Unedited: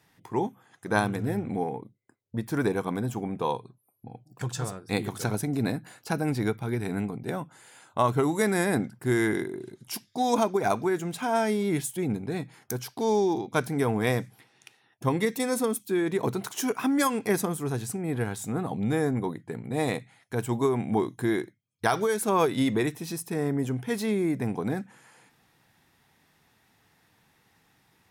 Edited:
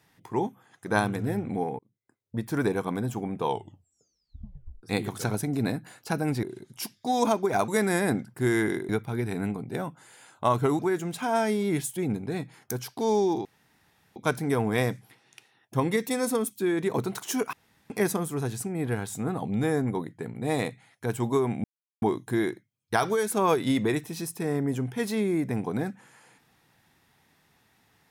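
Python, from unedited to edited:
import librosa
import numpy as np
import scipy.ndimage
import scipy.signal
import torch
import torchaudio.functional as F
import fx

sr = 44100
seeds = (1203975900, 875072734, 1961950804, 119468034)

y = fx.edit(x, sr, fx.fade_in_span(start_s=1.79, length_s=0.56),
    fx.tape_stop(start_s=3.42, length_s=1.41),
    fx.swap(start_s=6.43, length_s=1.9, other_s=9.54, other_length_s=1.25),
    fx.insert_room_tone(at_s=13.45, length_s=0.71),
    fx.room_tone_fill(start_s=16.82, length_s=0.37),
    fx.insert_silence(at_s=20.93, length_s=0.38), tone=tone)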